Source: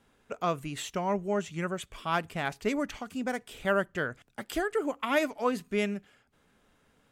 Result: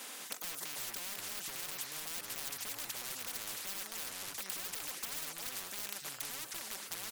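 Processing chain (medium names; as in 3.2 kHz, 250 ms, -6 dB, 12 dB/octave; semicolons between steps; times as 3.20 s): rattle on loud lows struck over -39 dBFS, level -29 dBFS; high-pass 430 Hz 12 dB/octave; wavefolder -28 dBFS; comb 3.9 ms, depth 68%; ever faster or slower copies 200 ms, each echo -5 st, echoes 2, each echo -6 dB; peak limiter -30 dBFS, peak gain reduction 9 dB; tilt EQ +3 dB/octave; spectrum-flattening compressor 10:1; trim +2.5 dB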